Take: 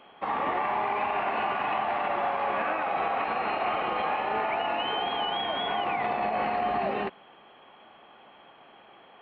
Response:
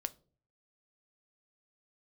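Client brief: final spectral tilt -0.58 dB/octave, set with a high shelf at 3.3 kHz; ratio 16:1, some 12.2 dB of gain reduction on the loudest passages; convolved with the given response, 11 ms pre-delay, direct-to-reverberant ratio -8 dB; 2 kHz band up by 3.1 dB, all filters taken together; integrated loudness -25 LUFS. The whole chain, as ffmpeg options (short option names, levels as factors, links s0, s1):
-filter_complex "[0:a]equalizer=f=2000:t=o:g=6.5,highshelf=f=3300:g=-8,acompressor=threshold=0.0158:ratio=16,asplit=2[s0][s1];[1:a]atrim=start_sample=2205,adelay=11[s2];[s1][s2]afir=irnorm=-1:irlink=0,volume=2.82[s3];[s0][s3]amix=inputs=2:normalize=0,volume=1.88"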